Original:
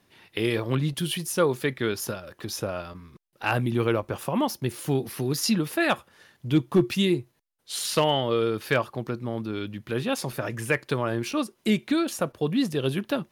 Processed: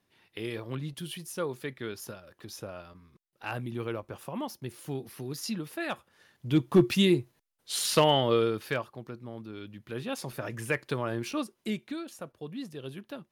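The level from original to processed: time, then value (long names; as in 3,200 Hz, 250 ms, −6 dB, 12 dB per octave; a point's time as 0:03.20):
0:05.93 −10.5 dB
0:06.80 0 dB
0:08.35 0 dB
0:08.92 −11 dB
0:09.54 −11 dB
0:10.58 −5 dB
0:11.37 −5 dB
0:12.06 −14.5 dB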